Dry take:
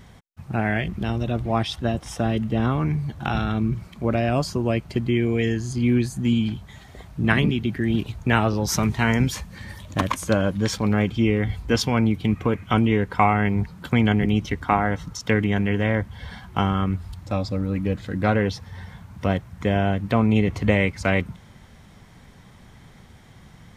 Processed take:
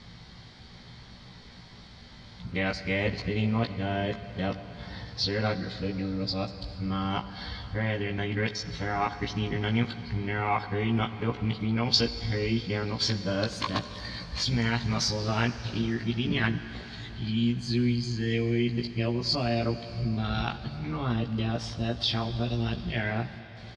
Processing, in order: reverse the whole clip; compression 1.5:1, threshold -35 dBFS, peak gain reduction 8.5 dB; resonant low-pass 4.5 kHz, resonance Q 6.2; doubling 17 ms -4 dB; on a send: reverberation RT60 4.2 s, pre-delay 20 ms, DRR 11 dB; on the sum: trim -3 dB

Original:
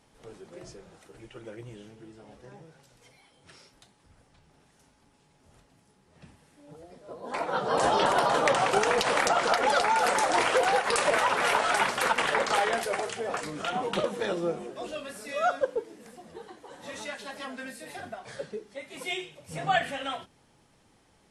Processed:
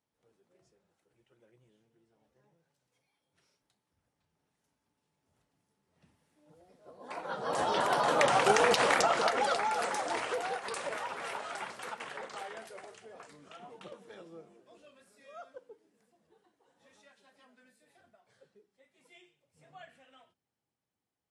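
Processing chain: Doppler pass-by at 8.62 s, 11 m/s, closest 5.7 m; high-pass 69 Hz

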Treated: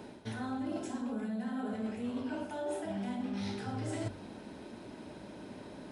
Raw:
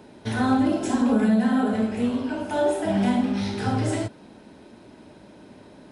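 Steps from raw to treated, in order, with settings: de-hum 47.93 Hz, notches 3; reverse; compression 12:1, threshold -34 dBFS, peak gain reduction 18.5 dB; reverse

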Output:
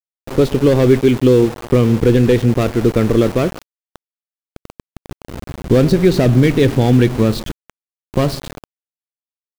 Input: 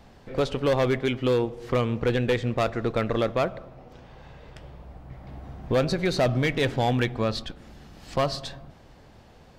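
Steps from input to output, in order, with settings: level-controlled noise filter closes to 310 Hz, open at -23 dBFS; resonant low shelf 510 Hz +9 dB, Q 1.5; small samples zeroed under -27 dBFS; trim +4 dB

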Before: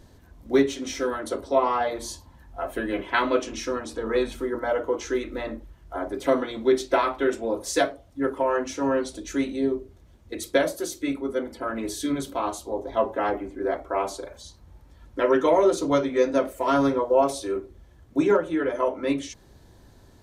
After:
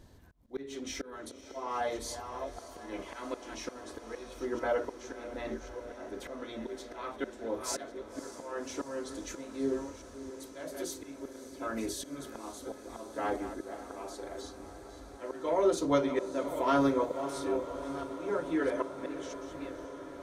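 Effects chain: chunks repeated in reverse 668 ms, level -14 dB; slow attack 416 ms; echo that smears into a reverb 575 ms, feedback 79%, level -13.5 dB; trim -5 dB

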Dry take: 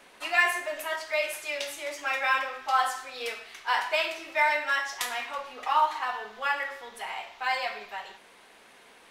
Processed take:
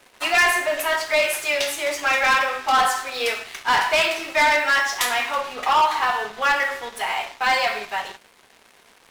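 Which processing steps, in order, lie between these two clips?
waveshaping leveller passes 3

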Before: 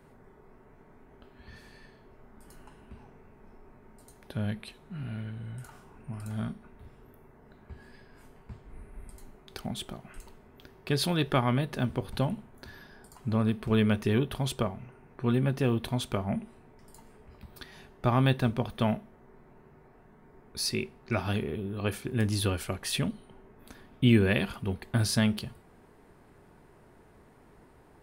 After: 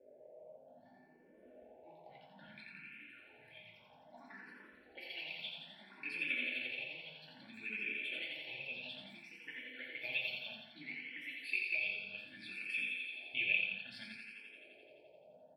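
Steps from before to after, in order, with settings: band-stop 5.9 kHz, Q 12; in parallel at -0.5 dB: compression 6:1, threshold -33 dBFS, peak gain reduction 15.5 dB; on the sum: comb of notches 970 Hz; tempo 1.8×; ever faster or slower copies 165 ms, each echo +4 st, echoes 2, each echo -6 dB; auto-wah 510–2500 Hz, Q 6.8, up, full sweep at -29.5 dBFS; static phaser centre 2.9 kHz, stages 4; on a send: thinning echo 86 ms, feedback 72%, high-pass 220 Hz, level -4 dB; on the sum: simulated room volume 270 m³, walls furnished, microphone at 2.5 m; barber-pole phaser +0.61 Hz; trim +2.5 dB

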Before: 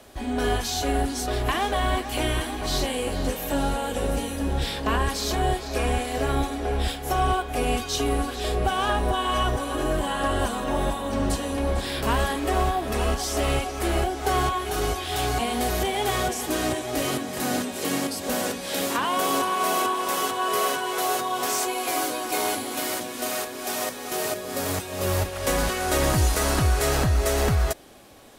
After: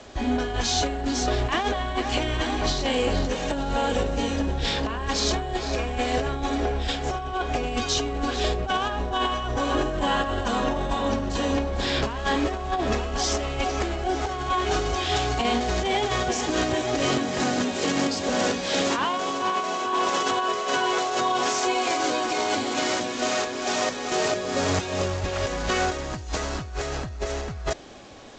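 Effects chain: in parallel at -8.5 dB: saturation -22 dBFS, distortion -13 dB; on the sum: compressor with a negative ratio -24 dBFS, ratio -0.5; G.722 64 kbps 16 kHz

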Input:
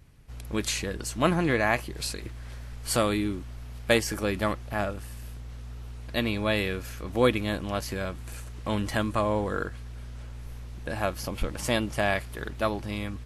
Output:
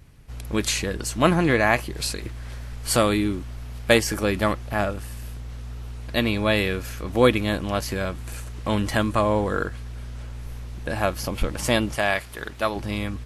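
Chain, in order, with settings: 11.95–12.76 s: bass shelf 420 Hz -8 dB; trim +5 dB

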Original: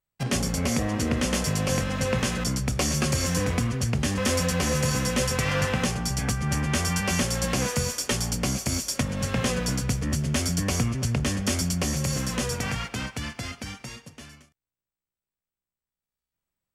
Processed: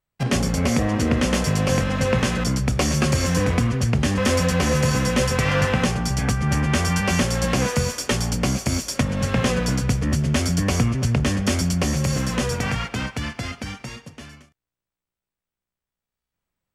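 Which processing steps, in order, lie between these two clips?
treble shelf 5 kHz -8 dB; trim +5.5 dB

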